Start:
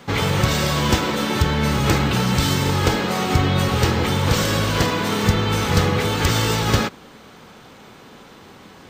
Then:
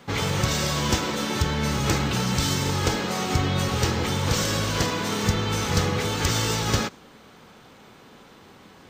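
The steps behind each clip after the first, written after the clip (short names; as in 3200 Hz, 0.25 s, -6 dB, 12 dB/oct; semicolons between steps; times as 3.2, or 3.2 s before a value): dynamic EQ 6200 Hz, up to +6 dB, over -42 dBFS, Q 1.4; gain -5.5 dB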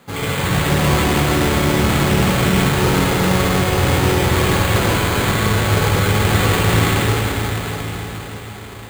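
reverb RT60 5.6 s, pre-delay 48 ms, DRR -8 dB; careless resampling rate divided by 8×, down none, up hold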